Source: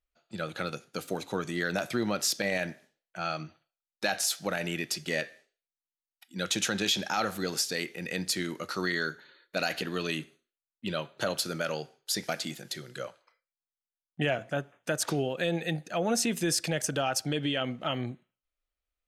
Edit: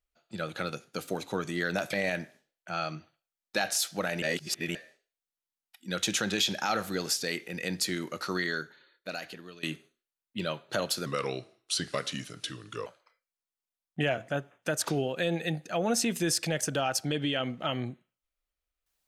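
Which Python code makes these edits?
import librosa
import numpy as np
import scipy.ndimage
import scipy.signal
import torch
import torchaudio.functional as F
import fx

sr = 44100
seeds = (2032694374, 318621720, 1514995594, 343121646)

y = fx.edit(x, sr, fx.cut(start_s=1.93, length_s=0.48),
    fx.reverse_span(start_s=4.7, length_s=0.53),
    fx.fade_out_to(start_s=8.76, length_s=1.35, floor_db=-20.5),
    fx.speed_span(start_s=11.54, length_s=1.53, speed=0.85), tone=tone)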